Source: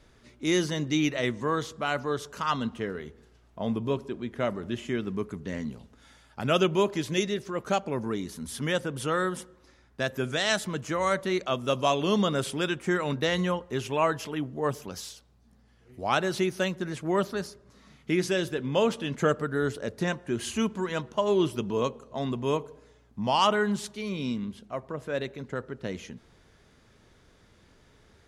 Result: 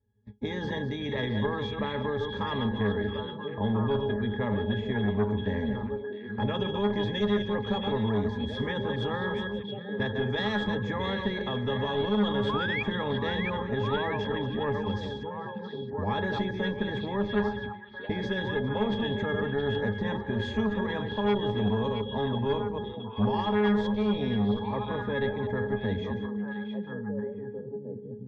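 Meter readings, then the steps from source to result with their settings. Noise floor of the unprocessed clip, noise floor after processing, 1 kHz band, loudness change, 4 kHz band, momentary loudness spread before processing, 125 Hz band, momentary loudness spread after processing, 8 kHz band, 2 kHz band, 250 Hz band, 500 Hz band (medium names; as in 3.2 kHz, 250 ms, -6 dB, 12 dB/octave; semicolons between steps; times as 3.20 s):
-60 dBFS, -40 dBFS, -2.5 dB, -1.0 dB, -1.5 dB, 11 LU, +3.0 dB, 8 LU, under -20 dB, -0.5 dB, +1.5 dB, -0.5 dB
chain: chunks repeated in reverse 128 ms, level -11 dB; gate -50 dBFS, range -35 dB; bass shelf 400 Hz +7 dB; peak limiter -19.5 dBFS, peak gain reduction 11.5 dB; pitch-class resonator G#, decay 0.18 s; painted sound rise, 12.49–12.83 s, 1–2.5 kHz -48 dBFS; Chebyshev shaper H 8 -36 dB, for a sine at -20 dBFS; distance through air 120 m; repeats whose band climbs or falls 670 ms, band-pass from 3.1 kHz, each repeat -1.4 oct, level -5 dB; spectrum-flattening compressor 2:1; trim +7.5 dB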